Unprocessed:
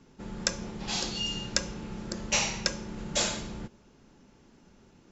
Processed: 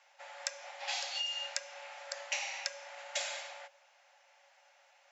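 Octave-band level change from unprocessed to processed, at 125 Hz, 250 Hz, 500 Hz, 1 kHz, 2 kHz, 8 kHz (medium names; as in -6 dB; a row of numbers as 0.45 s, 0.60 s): under -40 dB, under -40 dB, -8.5 dB, -5.0 dB, -4.0 dB, no reading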